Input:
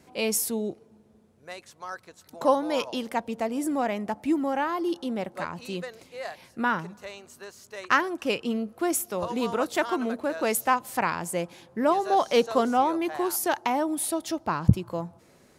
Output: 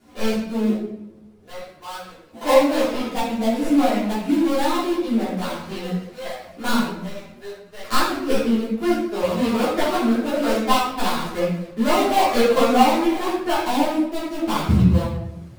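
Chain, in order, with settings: dead-time distortion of 0.21 ms; simulated room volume 240 m³, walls mixed, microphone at 3.2 m; three-phase chorus; trim -1 dB

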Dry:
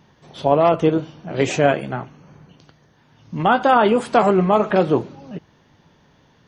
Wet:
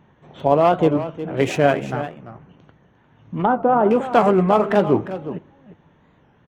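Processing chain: local Wiener filter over 9 samples; 1.92–3.91 s: low-pass that closes with the level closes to 900 Hz, closed at -14 dBFS; delay 351 ms -12.5 dB; warped record 45 rpm, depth 160 cents

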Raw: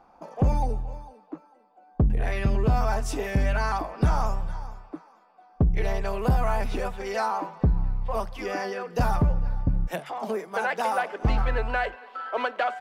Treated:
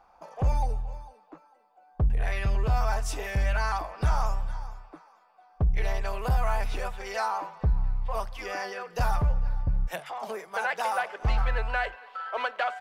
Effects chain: peaking EQ 250 Hz -13.5 dB 1.7 oct

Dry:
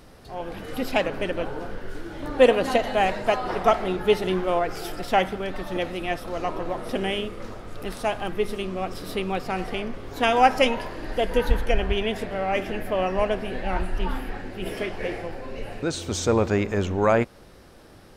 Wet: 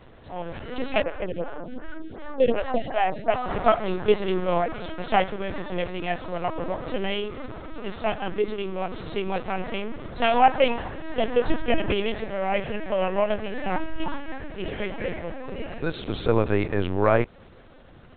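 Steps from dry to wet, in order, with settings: LPC vocoder at 8 kHz pitch kept; 1.03–3.34 s: lamp-driven phase shifter 2.7 Hz

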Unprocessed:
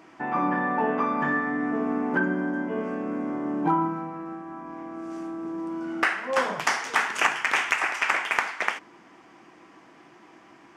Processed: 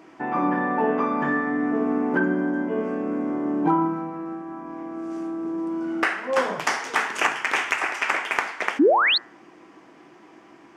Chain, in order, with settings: painted sound rise, 8.79–9.18 s, 250–4600 Hz -19 dBFS; peaking EQ 380 Hz +5 dB 1.5 oct; de-hum 116.5 Hz, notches 17

